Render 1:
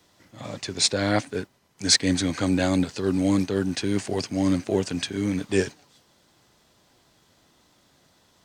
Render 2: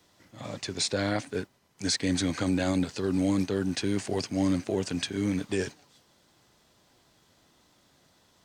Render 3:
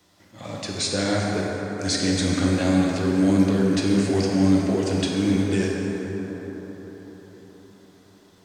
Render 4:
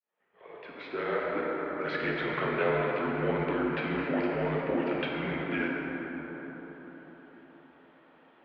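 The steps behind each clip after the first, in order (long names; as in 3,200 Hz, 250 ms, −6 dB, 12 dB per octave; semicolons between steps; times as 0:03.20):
brickwall limiter −15 dBFS, peak gain reduction 9.5 dB; level −2.5 dB
dense smooth reverb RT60 4.8 s, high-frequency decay 0.4×, DRR −3 dB; level +1.5 dB
fade in at the beginning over 1.88 s; single-sideband voice off tune −130 Hz 480–2,800 Hz; level +1.5 dB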